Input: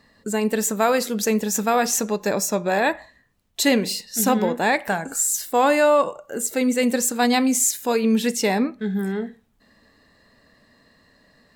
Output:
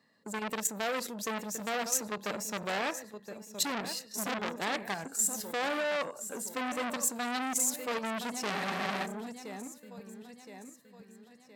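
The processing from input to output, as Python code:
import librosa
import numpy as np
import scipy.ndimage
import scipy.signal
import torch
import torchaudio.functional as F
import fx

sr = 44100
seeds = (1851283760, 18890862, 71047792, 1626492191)

p1 = scipy.signal.sosfilt(scipy.signal.butter(4, 130.0, 'highpass', fs=sr, output='sos'), x)
p2 = fx.level_steps(p1, sr, step_db=11)
p3 = p2 + fx.echo_feedback(p2, sr, ms=1019, feedback_pct=43, wet_db=-14, dry=0)
p4 = fx.spec_freeze(p3, sr, seeds[0], at_s=8.54, hold_s=0.5)
p5 = fx.transformer_sat(p4, sr, knee_hz=3200.0)
y = F.gain(torch.from_numpy(p5), -4.5).numpy()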